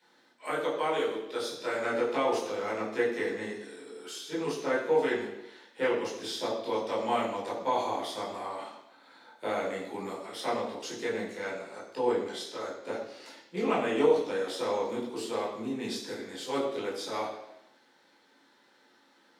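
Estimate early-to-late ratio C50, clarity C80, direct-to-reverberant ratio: 4.5 dB, 6.5 dB, −7.5 dB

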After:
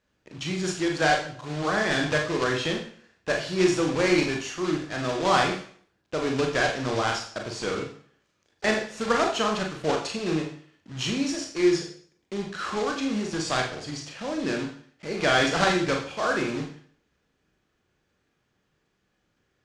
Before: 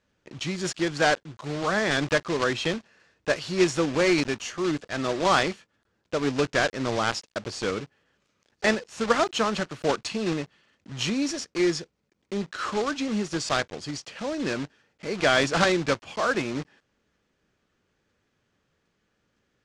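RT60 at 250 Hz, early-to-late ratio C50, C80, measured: 0.55 s, 7.0 dB, 10.5 dB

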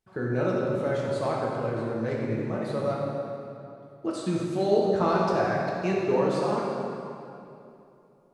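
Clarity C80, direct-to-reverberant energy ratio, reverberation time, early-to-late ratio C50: 0.5 dB, −4.5 dB, 2.8 s, −1.0 dB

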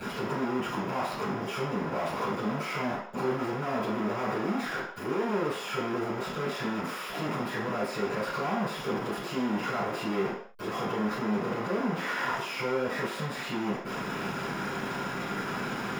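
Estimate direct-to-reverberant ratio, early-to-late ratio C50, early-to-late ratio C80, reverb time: −13.5 dB, 3.5 dB, 7.0 dB, non-exponential decay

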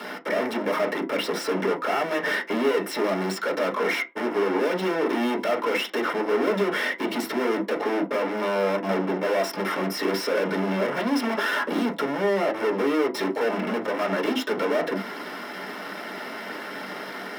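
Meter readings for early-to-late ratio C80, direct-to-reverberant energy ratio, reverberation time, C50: 24.0 dB, 0.5 dB, non-exponential decay, 17.5 dB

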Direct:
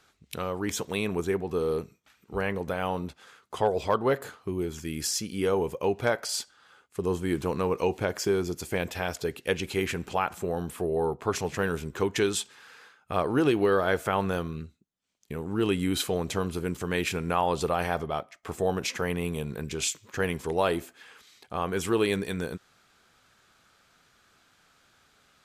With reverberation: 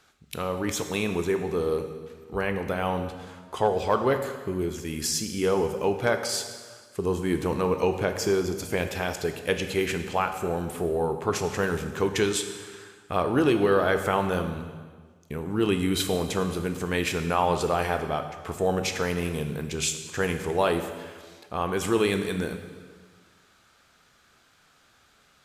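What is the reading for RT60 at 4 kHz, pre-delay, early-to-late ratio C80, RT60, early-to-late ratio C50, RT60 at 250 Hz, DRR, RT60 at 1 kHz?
1.4 s, 16 ms, 10.0 dB, 1.5 s, 8.5 dB, 1.7 s, 7.0 dB, 1.5 s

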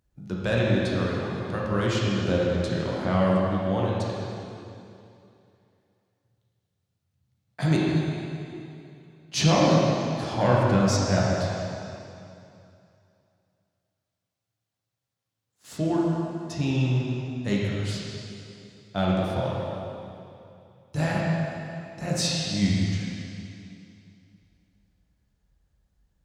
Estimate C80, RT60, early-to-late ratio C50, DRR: −1.0 dB, 2.7 s, −2.5 dB, −5.0 dB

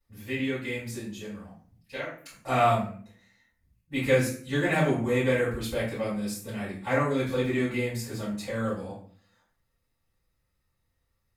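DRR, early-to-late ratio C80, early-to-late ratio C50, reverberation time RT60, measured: −12.0 dB, 8.5 dB, 4.5 dB, 0.50 s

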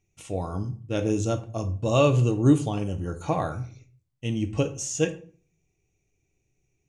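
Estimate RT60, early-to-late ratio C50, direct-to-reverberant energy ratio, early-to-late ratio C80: 0.45 s, 14.0 dB, 7.0 dB, 19.0 dB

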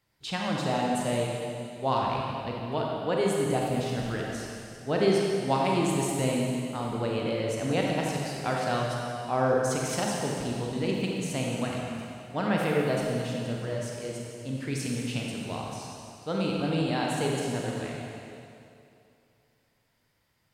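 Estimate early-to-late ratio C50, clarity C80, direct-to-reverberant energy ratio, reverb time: −1.0 dB, 0.0 dB, −2.5 dB, 2.7 s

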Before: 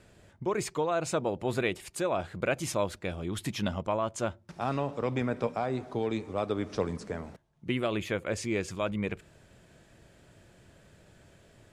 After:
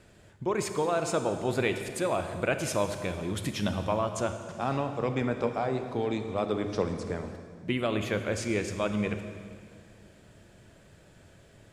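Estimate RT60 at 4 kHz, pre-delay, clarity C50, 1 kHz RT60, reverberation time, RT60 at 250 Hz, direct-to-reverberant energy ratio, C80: 1.9 s, 29 ms, 8.5 dB, 1.9 s, 2.1 s, 2.7 s, 7.5 dB, 9.0 dB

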